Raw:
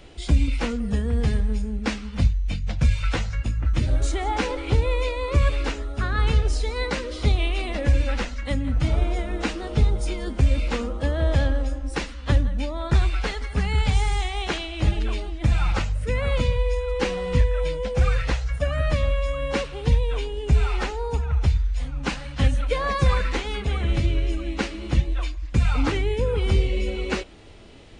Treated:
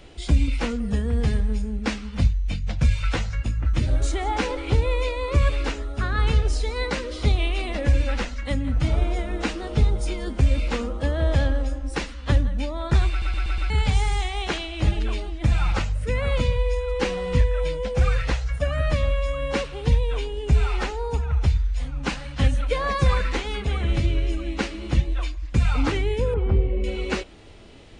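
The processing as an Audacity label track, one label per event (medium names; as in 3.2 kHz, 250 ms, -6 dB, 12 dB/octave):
13.100000	13.100000	stutter in place 0.12 s, 5 plays
26.340000	26.840000	low-pass 1.2 kHz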